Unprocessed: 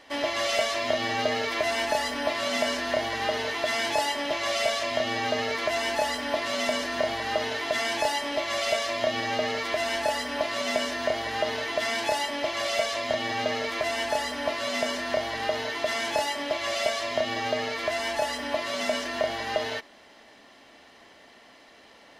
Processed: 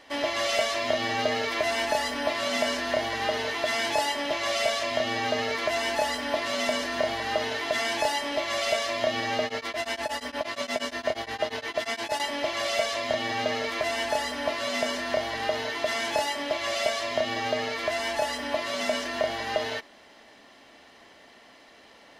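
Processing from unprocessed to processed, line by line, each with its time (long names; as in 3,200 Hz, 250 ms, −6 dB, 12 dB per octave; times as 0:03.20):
0:09.44–0:12.20: tremolo along a rectified sine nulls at 8.5 Hz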